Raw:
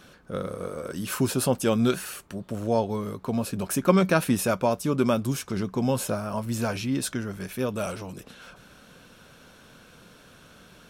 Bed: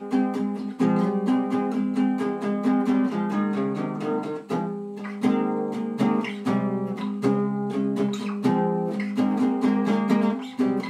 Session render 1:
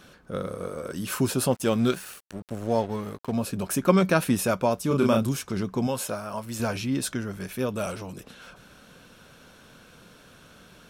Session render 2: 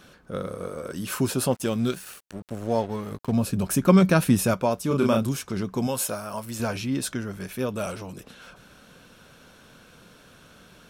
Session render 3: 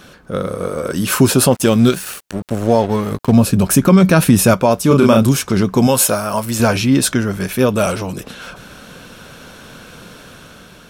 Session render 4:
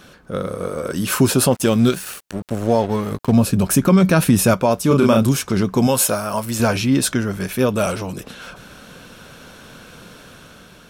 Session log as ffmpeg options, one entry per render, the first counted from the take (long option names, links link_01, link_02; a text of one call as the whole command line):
ffmpeg -i in.wav -filter_complex "[0:a]asettb=1/sr,asplit=3[link_01][link_02][link_03];[link_01]atrim=end=1.514[link_04];[link_02]atrim=start=1.51:end=3.32,asetpts=PTS-STARTPTS,afade=type=in:duration=0.004:curve=qsin,afade=type=out:start_time=1.806:duration=0.004:curve=qsin,aeval=exprs='sgn(val(0))*max(abs(val(0))-0.00841,0)':channel_layout=same[link_05];[link_03]atrim=start=3.316[link_06];[link_04][link_05]acrossfade=duration=0.004:curve1=hsin:curve2=qsin[link_07];[link_07][link_06]acrossfade=duration=0.004:curve1=qsin:curve2=hsin,asettb=1/sr,asplit=3[link_08][link_09][link_10];[link_08]atrim=end=4.874[link_11];[link_09]atrim=start=4.87:end=5.29,asetpts=PTS-STARTPTS,afade=type=in:duration=0.004:curve=qsin,afade=type=out:start_time=0.416:duration=0.004:curve=qsin,asplit=2[link_12][link_13];[link_13]adelay=36,volume=-3dB[link_14];[link_12][link_14]amix=inputs=2:normalize=0,atrim=end_sample=18522[link_15];[link_10]atrim=start=5.286[link_16];[link_11][link_15]acrossfade=duration=0.004:curve1=hsin:curve2=qsin[link_17];[link_17][link_16]acrossfade=duration=0.004:curve1=qsin:curve2=hsin,asettb=1/sr,asplit=3[link_18][link_19][link_20];[link_18]atrim=end=5.874[link_21];[link_19]atrim=start=5.87:end=6.6,asetpts=PTS-STARTPTS,afade=type=in:duration=0.004:curve=qsin,afade=type=out:start_time=0.726:duration=0.004:curve=qsin,lowshelf=frequency=370:gain=-8.5[link_22];[link_20]atrim=start=6.596[link_23];[link_21][link_22]acrossfade=duration=0.004:curve1=hsin:curve2=qsin[link_24];[link_24][link_23]acrossfade=duration=0.004:curve1=qsin:curve2=hsin" out.wav
ffmpeg -i in.wav -filter_complex "[0:a]asettb=1/sr,asplit=3[link_01][link_02][link_03];[link_01]atrim=end=1.664[link_04];[link_02]atrim=start=1.66:end=2.07,asetpts=PTS-STARTPTS,afade=type=in:duration=0.004:curve=qsin,afade=type=out:start_time=0.406:duration=0.004:curve=qsin,equalizer=frequency=980:width=0.34:gain=-5[link_05];[link_03]atrim=start=2.066[link_06];[link_04][link_05]acrossfade=duration=0.004:curve1=hsin:curve2=qsin[link_07];[link_07][link_06]acrossfade=duration=0.004:curve1=qsin:curve2=hsin,asettb=1/sr,asplit=3[link_08][link_09][link_10];[link_08]atrim=end=3.114[link_11];[link_09]atrim=start=3.11:end=4.54,asetpts=PTS-STARTPTS,afade=type=in:duration=0.004:curve=qsin,afade=type=out:start_time=1.426:duration=0.004:curve=qsin,bass=frequency=250:gain=7,treble=frequency=4000:gain=2[link_12];[link_10]atrim=start=4.536[link_13];[link_11][link_12]acrossfade=duration=0.004:curve1=hsin:curve2=qsin[link_14];[link_14][link_13]acrossfade=duration=0.004:curve1=qsin:curve2=hsin,asettb=1/sr,asplit=3[link_15][link_16][link_17];[link_15]atrim=end=5.744[link_18];[link_16]atrim=start=5.74:end=6.51,asetpts=PTS-STARTPTS,afade=type=in:duration=0.004:curve=qsin,afade=type=out:start_time=0.766:duration=0.004:curve=qsin,highshelf=frequency=6700:gain=8.5[link_19];[link_17]atrim=start=6.506[link_20];[link_18][link_19]acrossfade=duration=0.004:curve1=hsin:curve2=qsin[link_21];[link_21][link_20]acrossfade=duration=0.004:curve1=qsin:curve2=hsin" out.wav
ffmpeg -i in.wav -af "dynaudnorm=framelen=200:gausssize=7:maxgain=4dB,alimiter=level_in=10dB:limit=-1dB:release=50:level=0:latency=1" out.wav
ffmpeg -i in.wav -af "volume=-3.5dB" out.wav